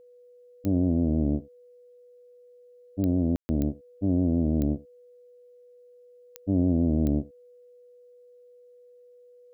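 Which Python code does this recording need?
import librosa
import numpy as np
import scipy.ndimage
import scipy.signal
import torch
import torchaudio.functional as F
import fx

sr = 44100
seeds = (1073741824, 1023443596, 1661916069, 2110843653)

y = fx.fix_declick_ar(x, sr, threshold=10.0)
y = fx.notch(y, sr, hz=490.0, q=30.0)
y = fx.fix_ambience(y, sr, seeds[0], print_start_s=7.73, print_end_s=8.23, start_s=3.36, end_s=3.49)
y = fx.fix_echo_inverse(y, sr, delay_ms=76, level_db=-22.5)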